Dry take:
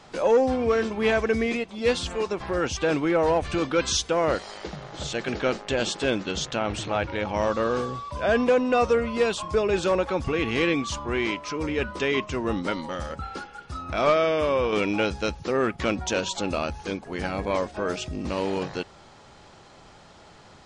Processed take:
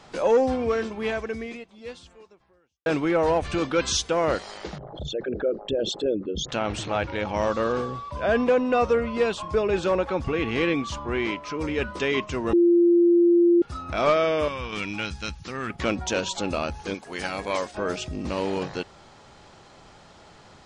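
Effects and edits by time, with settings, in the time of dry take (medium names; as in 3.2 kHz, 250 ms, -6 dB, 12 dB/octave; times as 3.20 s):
0.45–2.86 s: fade out quadratic
4.78–6.49 s: resonances exaggerated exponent 3
7.72–11.59 s: treble shelf 5.1 kHz -9 dB
12.53–13.62 s: bleep 345 Hz -14 dBFS
14.48–15.70 s: peaking EQ 490 Hz -14.5 dB 1.8 oct
16.94–17.75 s: tilt EQ +2.5 dB/octave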